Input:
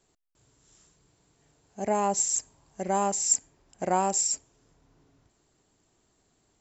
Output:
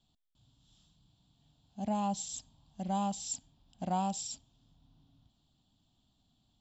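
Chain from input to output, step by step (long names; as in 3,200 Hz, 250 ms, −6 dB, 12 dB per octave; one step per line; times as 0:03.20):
drawn EQ curve 250 Hz 0 dB, 410 Hz −21 dB, 750 Hz −6 dB, 2,100 Hz −19 dB, 3,400 Hz +6 dB, 6,400 Hz −15 dB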